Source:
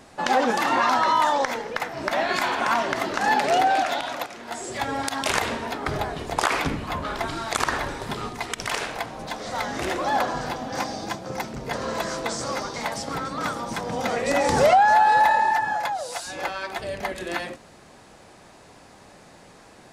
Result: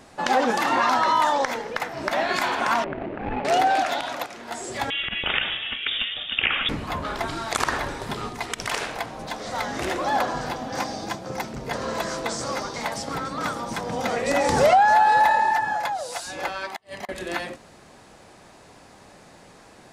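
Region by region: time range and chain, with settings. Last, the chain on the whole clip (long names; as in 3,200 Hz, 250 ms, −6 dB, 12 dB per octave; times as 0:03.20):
0:02.84–0:03.45: running median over 41 samples + low-pass filter 2,700 Hz 24 dB per octave
0:04.90–0:06.69: notch filter 2,600 Hz, Q 21 + voice inversion scrambler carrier 3,600 Hz
0:16.68–0:17.09: high-pass filter 320 Hz 6 dB per octave + comb filter 1 ms, depth 43% + gate with flip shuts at −20 dBFS, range −32 dB
whole clip: no processing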